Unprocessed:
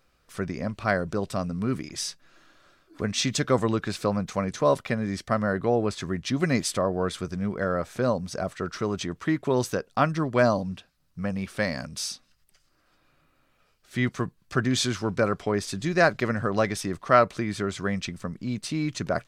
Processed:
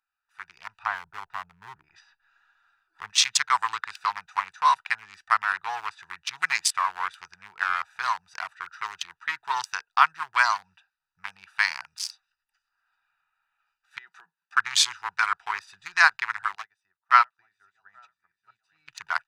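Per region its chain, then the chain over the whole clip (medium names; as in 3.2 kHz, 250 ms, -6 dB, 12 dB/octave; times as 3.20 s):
0.83–3.10 s: low-pass that closes with the level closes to 770 Hz, closed at -25 dBFS + bass shelf 280 Hz +6 dB
13.98–14.57 s: elliptic high-pass 160 Hz + compression 2.5:1, threshold -35 dBFS
16.55–18.88 s: chunks repeated in reverse 652 ms, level -10 dB + delay 836 ms -10.5 dB + upward expansion 2.5:1, over -33 dBFS
whole clip: local Wiener filter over 41 samples; elliptic high-pass 900 Hz, stop band 40 dB; level rider gain up to 10.5 dB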